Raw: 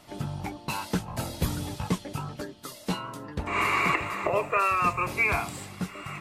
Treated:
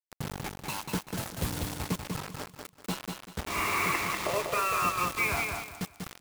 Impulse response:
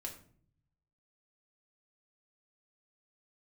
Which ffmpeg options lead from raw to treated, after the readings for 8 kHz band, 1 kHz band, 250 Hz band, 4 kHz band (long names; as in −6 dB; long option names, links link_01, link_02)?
+3.5 dB, −3.5 dB, −4.0 dB, +0.5 dB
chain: -af "acrusher=bits=4:mix=0:aa=0.000001,aecho=1:1:193|386|579|772:0.596|0.167|0.0467|0.0131,volume=-5dB"